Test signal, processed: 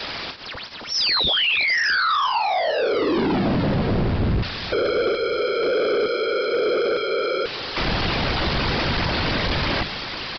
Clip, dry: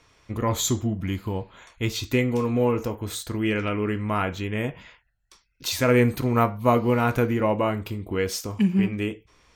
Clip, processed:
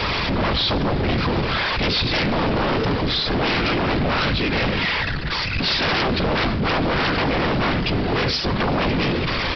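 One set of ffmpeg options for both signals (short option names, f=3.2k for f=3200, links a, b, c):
-filter_complex "[0:a]aeval=exprs='val(0)+0.5*0.0562*sgn(val(0))':c=same,bandreject=f=50:t=h:w=6,bandreject=f=100:t=h:w=6,bandreject=f=150:t=h:w=6,bandreject=f=200:t=h:w=6,bandreject=f=250:t=h:w=6,acrossover=split=350|1200[a][b][c];[b]acompressor=threshold=-35dB:ratio=6[d];[a][d][c]amix=inputs=3:normalize=0,afftfilt=real='hypot(re,im)*cos(2*PI*random(0))':imag='hypot(re,im)*sin(2*PI*random(1))':win_size=512:overlap=0.75,aresample=11025,aeval=exprs='0.211*sin(PI/2*7.08*val(0)/0.211)':c=same,aresample=44100,asplit=2[e][f];[f]adelay=330,lowpass=f=1.7k:p=1,volume=-18dB,asplit=2[g][h];[h]adelay=330,lowpass=f=1.7k:p=1,volume=0.51,asplit=2[i][j];[j]adelay=330,lowpass=f=1.7k:p=1,volume=0.51,asplit=2[k][l];[l]adelay=330,lowpass=f=1.7k:p=1,volume=0.51[m];[e][g][i][k][m]amix=inputs=5:normalize=0,volume=-3.5dB"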